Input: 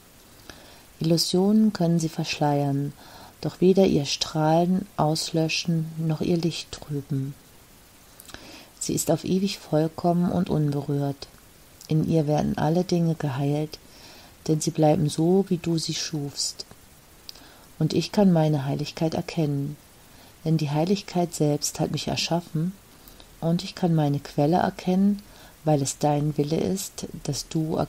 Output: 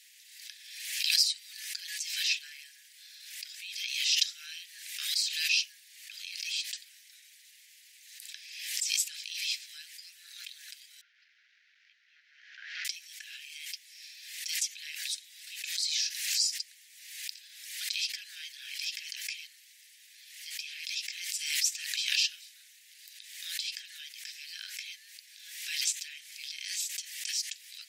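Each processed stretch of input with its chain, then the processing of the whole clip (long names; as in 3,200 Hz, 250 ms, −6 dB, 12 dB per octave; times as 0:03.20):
0:11.01–0:12.85: linear delta modulator 32 kbit/s, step −35.5 dBFS + resonant band-pass 1,400 Hz, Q 6.8
whole clip: Butterworth high-pass 1,800 Hz 72 dB per octave; high-shelf EQ 11,000 Hz −8 dB; background raised ahead of every attack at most 51 dB per second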